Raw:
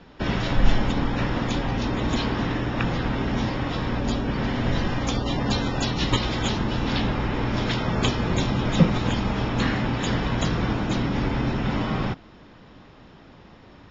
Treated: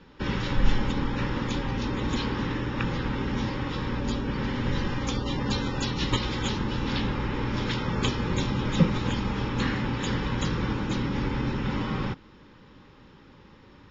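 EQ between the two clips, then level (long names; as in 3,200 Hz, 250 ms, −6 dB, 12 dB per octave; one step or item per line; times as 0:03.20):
Butterworth band-reject 680 Hz, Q 3.7
−3.5 dB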